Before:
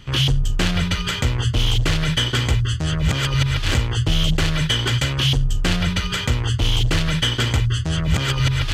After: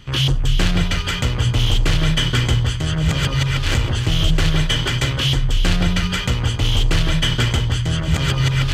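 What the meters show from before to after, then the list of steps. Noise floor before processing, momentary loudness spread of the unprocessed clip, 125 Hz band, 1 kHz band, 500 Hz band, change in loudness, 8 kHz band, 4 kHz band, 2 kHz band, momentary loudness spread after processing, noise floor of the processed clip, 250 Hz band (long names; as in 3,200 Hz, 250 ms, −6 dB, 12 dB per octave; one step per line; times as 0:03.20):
−26 dBFS, 2 LU, +1.5 dB, +1.0 dB, +1.5 dB, +1.5 dB, +0.5 dB, +0.5 dB, +1.0 dB, 2 LU, −23 dBFS, +1.5 dB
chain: delay that swaps between a low-pass and a high-pass 158 ms, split 1,100 Hz, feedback 60%, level −4.5 dB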